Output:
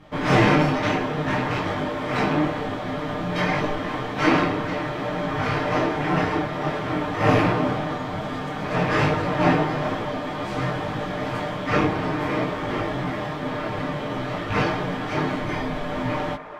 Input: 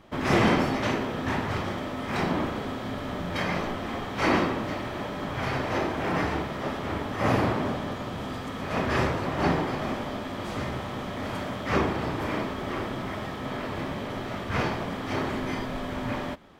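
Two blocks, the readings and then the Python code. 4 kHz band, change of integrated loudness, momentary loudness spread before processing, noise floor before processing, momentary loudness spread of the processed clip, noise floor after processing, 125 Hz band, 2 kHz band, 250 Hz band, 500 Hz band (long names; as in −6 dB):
+3.5 dB, +5.0 dB, 9 LU, −35 dBFS, 9 LU, −30 dBFS, +5.5 dB, +5.0 dB, +4.5 dB, +5.0 dB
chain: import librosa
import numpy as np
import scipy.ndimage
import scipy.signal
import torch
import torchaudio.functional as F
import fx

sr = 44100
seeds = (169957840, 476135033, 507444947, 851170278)

p1 = fx.rattle_buzz(x, sr, strikes_db=-25.0, level_db=-22.0)
p2 = fx.high_shelf(p1, sr, hz=7800.0, db=-10.0)
p3 = p2 + 0.65 * np.pad(p2, (int(6.6 * sr / 1000.0), 0))[:len(p2)]
p4 = p3 + fx.echo_wet_bandpass(p3, sr, ms=421, feedback_pct=82, hz=950.0, wet_db=-13.5, dry=0)
p5 = fx.detune_double(p4, sr, cents=19)
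y = p5 * 10.0 ** (7.0 / 20.0)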